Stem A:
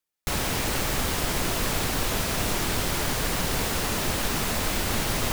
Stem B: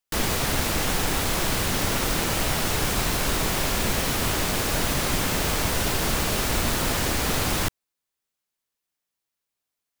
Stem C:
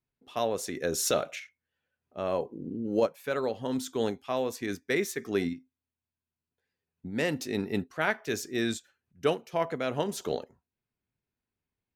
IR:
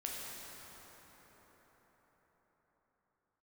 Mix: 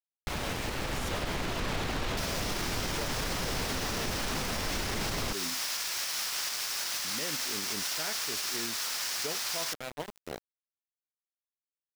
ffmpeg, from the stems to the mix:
-filter_complex "[0:a]lowpass=4500,volume=-5dB[link_01];[1:a]highpass=1200,equalizer=frequency=5300:width_type=o:width=0.66:gain=9,adelay=2050,volume=-12.5dB[link_02];[2:a]volume=-15dB[link_03];[link_01][link_02][link_03]amix=inputs=3:normalize=0,dynaudnorm=framelen=200:gausssize=13:maxgain=7.5dB,aeval=exprs='val(0)*gte(abs(val(0)),0.02)':channel_layout=same,alimiter=limit=-23dB:level=0:latency=1:release=126"

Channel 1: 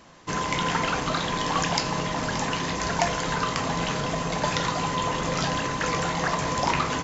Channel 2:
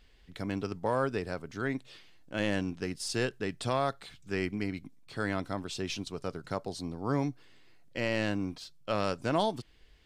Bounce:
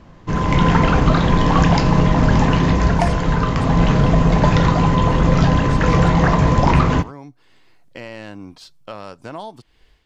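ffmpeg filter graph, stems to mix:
ffmpeg -i stem1.wav -i stem2.wav -filter_complex "[0:a]aemphasis=mode=reproduction:type=riaa,volume=1dB,asplit=2[link_01][link_02];[link_02]volume=-22dB[link_03];[1:a]equalizer=frequency=930:width=1.5:gain=5.5,acompressor=threshold=-41dB:ratio=2.5,volume=-3dB[link_04];[link_03]aecho=0:1:85:1[link_05];[link_01][link_04][link_05]amix=inputs=3:normalize=0,dynaudnorm=framelen=300:gausssize=3:maxgain=9dB" out.wav

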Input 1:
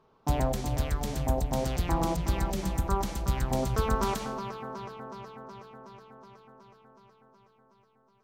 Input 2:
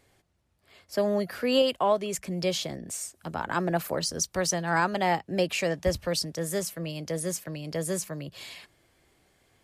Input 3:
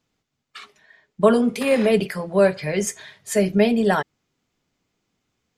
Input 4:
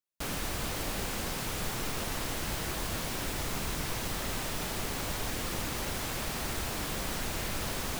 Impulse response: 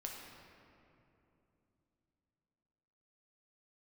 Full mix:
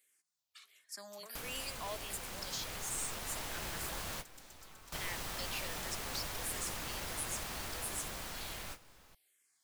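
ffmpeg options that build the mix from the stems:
-filter_complex "[0:a]highpass=1300,highshelf=frequency=8500:gain=-10,acompressor=threshold=-37dB:ratio=6,adelay=850,volume=-9.5dB[link_01];[1:a]asplit=2[link_02][link_03];[link_03]afreqshift=-1.4[link_04];[link_02][link_04]amix=inputs=2:normalize=1,volume=0dB,asplit=3[link_05][link_06][link_07];[link_05]atrim=end=4.01,asetpts=PTS-STARTPTS,afade=type=out:start_time=4.006:duration=0.004:curve=hsin[link_08];[link_06]atrim=start=4.01:end=4.92,asetpts=PTS-STARTPTS,volume=0[link_09];[link_07]atrim=start=4.92,asetpts=PTS-STARTPTS,afade=type=in:duration=0.004:curve=hsin[link_10];[link_08][link_09][link_10]concat=n=3:v=0:a=1,asplit=2[link_11][link_12];[2:a]aeval=exprs='(tanh(2.24*val(0)+0.6)-tanh(0.6))/2.24':channel_layout=same,acompressor=threshold=-25dB:ratio=6,volume=-6.5dB[link_13];[3:a]acrossover=split=550|1300[link_14][link_15][link_16];[link_14]acompressor=threshold=-51dB:ratio=4[link_17];[link_15]acompressor=threshold=-51dB:ratio=4[link_18];[link_16]acompressor=threshold=-44dB:ratio=4[link_19];[link_17][link_18][link_19]amix=inputs=3:normalize=0,dynaudnorm=framelen=490:gausssize=7:maxgain=4.5dB,adelay=1150,volume=-4dB,asplit=2[link_20][link_21];[link_21]volume=-14.5dB[link_22];[link_12]apad=whole_len=403366[link_23];[link_20][link_23]sidechaingate=range=-33dB:threshold=-60dB:ratio=16:detection=peak[link_24];[link_01][link_11][link_13]amix=inputs=3:normalize=0,aderivative,alimiter=level_in=6.5dB:limit=-24dB:level=0:latency=1,volume=-6.5dB,volume=0dB[link_25];[4:a]atrim=start_sample=2205[link_26];[link_22][link_26]afir=irnorm=-1:irlink=0[link_27];[link_24][link_25][link_27]amix=inputs=3:normalize=0,lowshelf=frequency=130:gain=4"

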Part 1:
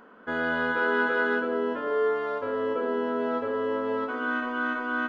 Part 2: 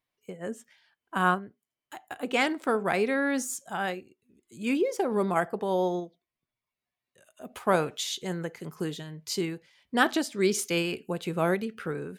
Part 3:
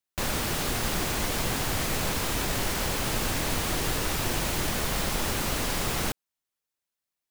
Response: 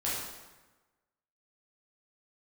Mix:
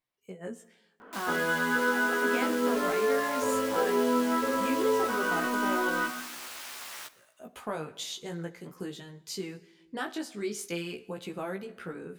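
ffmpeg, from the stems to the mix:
-filter_complex "[0:a]alimiter=limit=-21dB:level=0:latency=1,adelay=1000,volume=2.5dB,asplit=2[link_01][link_02];[link_02]volume=-12dB[link_03];[1:a]acompressor=threshold=-30dB:ratio=2.5,volume=-1.5dB,asplit=2[link_04][link_05];[link_05]volume=-21dB[link_06];[2:a]highpass=1000,aeval=exprs='val(0)*sin(2*PI*160*n/s)':channel_layout=same,adelay=950,volume=-5dB,asplit=2[link_07][link_08];[link_08]volume=-19.5dB[link_09];[3:a]atrim=start_sample=2205[link_10];[link_03][link_06][link_09]amix=inputs=3:normalize=0[link_11];[link_11][link_10]afir=irnorm=-1:irlink=0[link_12];[link_01][link_04][link_07][link_12]amix=inputs=4:normalize=0,flanger=delay=15:depth=4.2:speed=0.44"

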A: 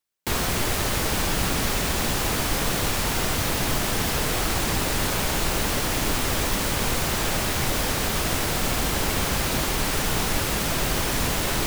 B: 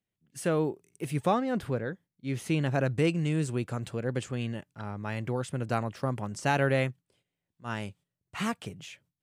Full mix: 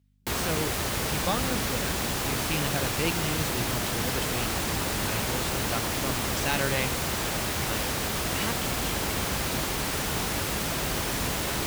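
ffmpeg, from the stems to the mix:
ffmpeg -i stem1.wav -i stem2.wav -filter_complex "[0:a]volume=-4dB[link_01];[1:a]aeval=exprs='val(0)+0.00141*(sin(2*PI*50*n/s)+sin(2*PI*2*50*n/s)/2+sin(2*PI*3*50*n/s)/3+sin(2*PI*4*50*n/s)/4+sin(2*PI*5*50*n/s)/5)':channel_layout=same,equalizer=frequency=3900:width=0.62:gain=12,volume=-5.5dB[link_02];[link_01][link_02]amix=inputs=2:normalize=0,highpass=46" out.wav

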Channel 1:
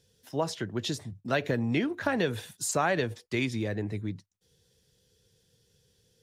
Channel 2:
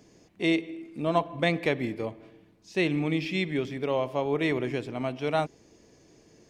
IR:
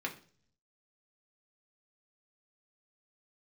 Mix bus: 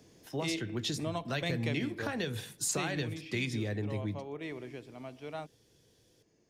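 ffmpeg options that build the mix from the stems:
-filter_complex "[0:a]volume=-2dB,asplit=2[link_01][link_02];[link_02]volume=-10.5dB[link_03];[1:a]volume=-3.5dB,afade=type=out:start_time=2.88:duration=0.28:silence=0.298538[link_04];[2:a]atrim=start_sample=2205[link_05];[link_03][link_05]afir=irnorm=-1:irlink=0[link_06];[link_01][link_04][link_06]amix=inputs=3:normalize=0,acrossover=split=150|3000[link_07][link_08][link_09];[link_08]acompressor=threshold=-34dB:ratio=6[link_10];[link_07][link_10][link_09]amix=inputs=3:normalize=0"

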